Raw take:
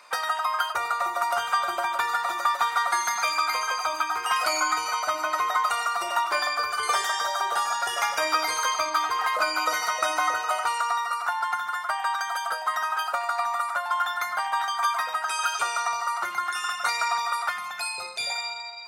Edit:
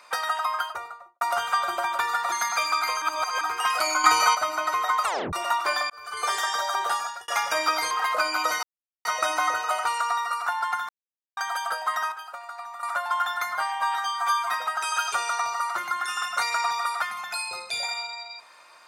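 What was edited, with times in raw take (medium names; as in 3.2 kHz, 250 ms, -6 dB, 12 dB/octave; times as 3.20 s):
0.41–1.21 s: studio fade out
2.32–2.98 s: delete
3.68–4.07 s: reverse
4.70–5.01 s: gain +8 dB
5.71 s: tape stop 0.28 s
6.56–7.05 s: fade in
7.57–7.94 s: fade out
8.57–9.13 s: delete
9.85 s: insert silence 0.42 s
11.69–12.17 s: mute
12.92–13.63 s: gain -11.5 dB
14.35–15.01 s: stretch 1.5×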